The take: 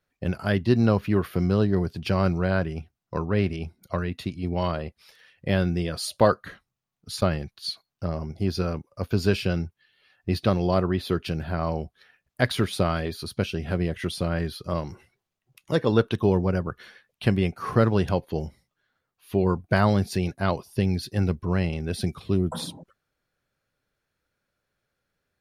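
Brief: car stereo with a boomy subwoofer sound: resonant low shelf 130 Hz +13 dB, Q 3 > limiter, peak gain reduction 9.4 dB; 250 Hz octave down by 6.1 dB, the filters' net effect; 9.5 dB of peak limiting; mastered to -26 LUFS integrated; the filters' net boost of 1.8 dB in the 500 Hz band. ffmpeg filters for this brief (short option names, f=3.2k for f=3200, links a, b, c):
-af "equalizer=f=250:t=o:g=-5,equalizer=f=500:t=o:g=5,alimiter=limit=-13dB:level=0:latency=1,lowshelf=f=130:t=q:w=3:g=13,volume=-5.5dB,alimiter=limit=-17.5dB:level=0:latency=1"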